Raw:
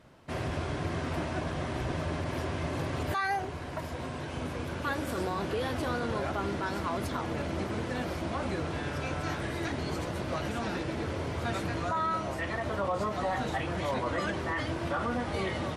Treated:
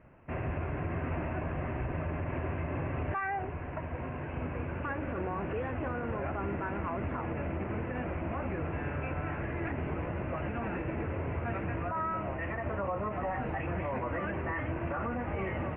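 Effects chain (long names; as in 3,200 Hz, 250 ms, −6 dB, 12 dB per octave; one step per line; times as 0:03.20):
Chebyshev low-pass filter 2,700 Hz, order 6
low-shelf EQ 82 Hz +9 dB
brickwall limiter −24 dBFS, peak gain reduction 4.5 dB
level −1.5 dB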